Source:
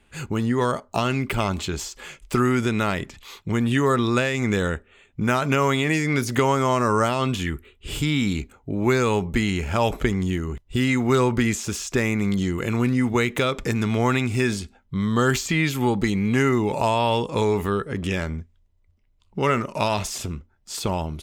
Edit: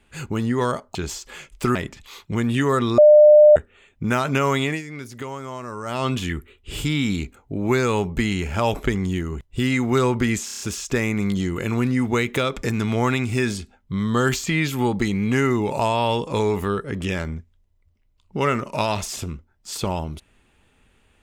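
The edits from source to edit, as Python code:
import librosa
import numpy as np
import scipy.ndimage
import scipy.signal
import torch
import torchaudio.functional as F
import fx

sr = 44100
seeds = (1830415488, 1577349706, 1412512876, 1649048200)

y = fx.edit(x, sr, fx.cut(start_s=0.95, length_s=0.7),
    fx.cut(start_s=2.45, length_s=0.47),
    fx.bleep(start_s=4.15, length_s=0.58, hz=601.0, db=-6.5),
    fx.fade_down_up(start_s=5.83, length_s=1.35, db=-12.5, fade_s=0.16),
    fx.stutter(start_s=11.62, slice_s=0.03, count=6), tone=tone)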